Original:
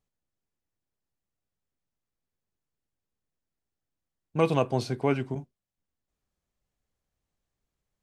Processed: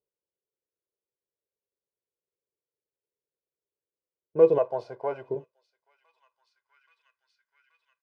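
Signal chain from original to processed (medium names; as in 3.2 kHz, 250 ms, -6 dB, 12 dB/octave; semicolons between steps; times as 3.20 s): waveshaping leveller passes 1; peaking EQ 5 kHz +7 dB 0.25 oct; comb 2 ms, depth 64%; feedback echo behind a high-pass 828 ms, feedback 68%, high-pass 2.6 kHz, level -20.5 dB; band-pass sweep 430 Hz -> 1.5 kHz, 5.25–6.96 s; 4.58–5.29 s: resonant low shelf 530 Hz -9.5 dB, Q 3; trim +3 dB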